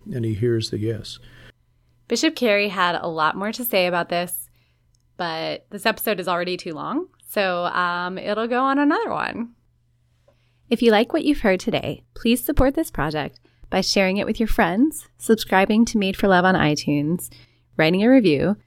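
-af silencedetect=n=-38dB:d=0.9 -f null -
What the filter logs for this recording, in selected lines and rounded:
silence_start: 9.46
silence_end: 10.71 | silence_duration: 1.24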